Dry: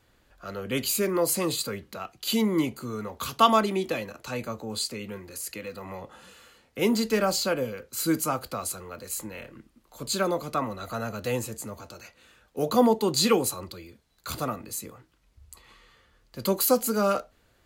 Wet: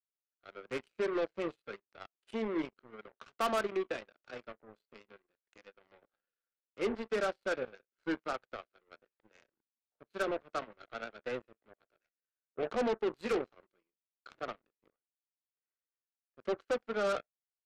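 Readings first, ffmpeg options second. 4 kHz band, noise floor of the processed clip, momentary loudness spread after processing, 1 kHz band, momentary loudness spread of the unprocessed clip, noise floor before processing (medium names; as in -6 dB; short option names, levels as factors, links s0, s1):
-17.5 dB, under -85 dBFS, 17 LU, -12.0 dB, 18 LU, -65 dBFS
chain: -af "highpass=f=180:w=0.5412,highpass=f=180:w=1.3066,equalizer=f=180:t=q:w=4:g=-10,equalizer=f=270:t=q:w=4:g=-5,equalizer=f=390:t=q:w=4:g=5,equalizer=f=640:t=q:w=4:g=4,equalizer=f=1000:t=q:w=4:g=-9,equalizer=f=1500:t=q:w=4:g=8,lowpass=f=2600:w=0.5412,lowpass=f=2600:w=1.3066,asoftclip=type=tanh:threshold=0.158,aeval=exprs='0.158*(cos(1*acos(clip(val(0)/0.158,-1,1)))-cos(1*PI/2))+0.00562*(cos(2*acos(clip(val(0)/0.158,-1,1)))-cos(2*PI/2))+0.0224*(cos(7*acos(clip(val(0)/0.158,-1,1)))-cos(7*PI/2))':c=same,volume=0.376"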